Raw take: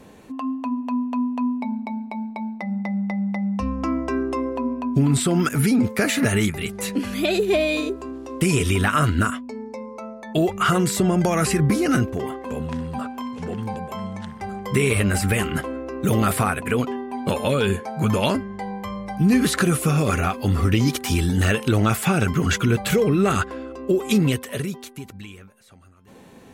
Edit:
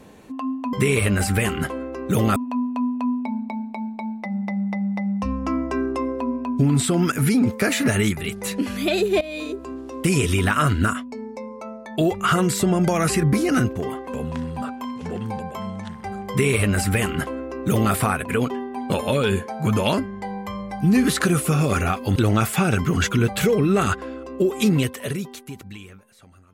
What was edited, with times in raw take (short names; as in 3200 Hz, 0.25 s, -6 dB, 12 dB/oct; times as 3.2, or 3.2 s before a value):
7.58–8.08 fade in, from -17 dB
14.67–16.3 copy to 0.73
20.53–21.65 cut